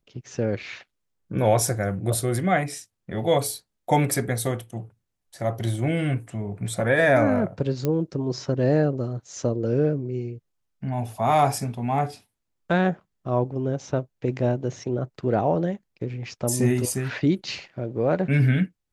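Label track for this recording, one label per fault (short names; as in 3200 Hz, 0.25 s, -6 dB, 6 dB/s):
7.850000	7.850000	pop -12 dBFS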